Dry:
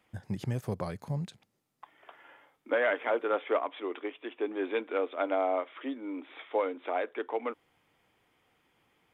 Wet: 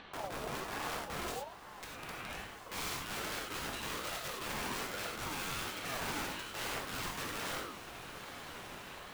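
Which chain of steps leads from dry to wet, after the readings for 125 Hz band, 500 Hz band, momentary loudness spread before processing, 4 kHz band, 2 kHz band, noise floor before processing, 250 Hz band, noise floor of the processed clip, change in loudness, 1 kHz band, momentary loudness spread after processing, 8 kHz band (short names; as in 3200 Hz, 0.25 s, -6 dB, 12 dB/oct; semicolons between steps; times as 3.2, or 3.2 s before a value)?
-9.5 dB, -13.5 dB, 11 LU, +9.0 dB, -2.0 dB, -74 dBFS, -8.5 dB, -50 dBFS, -7.0 dB, -4.5 dB, 9 LU, n/a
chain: LPF 4300 Hz 24 dB/oct; low shelf 200 Hz +7 dB; notches 50/100/150/200/250/300/350/400/450/500 Hz; reverse; compressor 16:1, threshold -41 dBFS, peak gain reduction 19.5 dB; reverse; limiter -39.5 dBFS, peak gain reduction 8.5 dB; upward compressor, threshold -53 dBFS; wrapped overs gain 45.5 dB; on a send: diffused feedback echo 1.293 s, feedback 57%, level -11 dB; on the sum: non-linear reverb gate 0.13 s flat, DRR -2.5 dB; ring modulator with a swept carrier 760 Hz, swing 30%, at 1.2 Hz; gain +10 dB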